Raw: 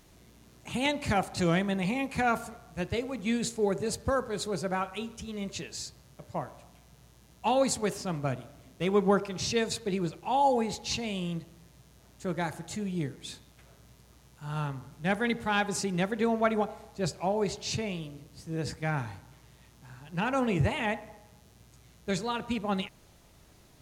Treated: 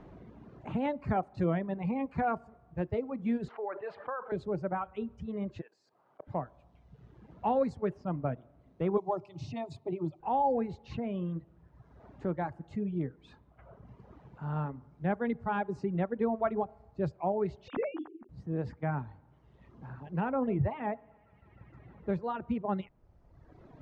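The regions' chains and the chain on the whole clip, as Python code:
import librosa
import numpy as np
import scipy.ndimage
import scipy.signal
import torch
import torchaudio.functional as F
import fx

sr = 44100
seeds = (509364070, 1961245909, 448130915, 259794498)

y = fx.chain(x, sr, fx.highpass(hz=1100.0, slope=12),
    fx.air_absorb(metres=380.0),
    fx.env_flatten(amount_pct=70), at=(3.48, 4.32))
y = fx.chain(y, sr, fx.highpass(hz=410.0, slope=12),
    fx.high_shelf(hz=6700.0, db=4.5),
    fx.level_steps(step_db=16), at=(5.61, 6.27))
y = fx.chain(y, sr, fx.high_shelf(hz=3700.0, db=8.5),
    fx.fixed_phaser(hz=310.0, stages=8), at=(8.97, 10.2))
y = fx.chain(y, sr, fx.sine_speech(),
    fx.hum_notches(base_hz=50, count=9), at=(17.68, 18.29))
y = fx.chain(y, sr, fx.high_shelf(hz=4200.0, db=-12.0),
    fx.echo_wet_highpass(ms=154, feedback_pct=78, hz=1500.0, wet_db=-18.5), at=(20.32, 22.22))
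y = scipy.signal.sosfilt(scipy.signal.butter(2, 1100.0, 'lowpass', fs=sr, output='sos'), y)
y = fx.dereverb_blind(y, sr, rt60_s=1.3)
y = fx.band_squash(y, sr, depth_pct=40)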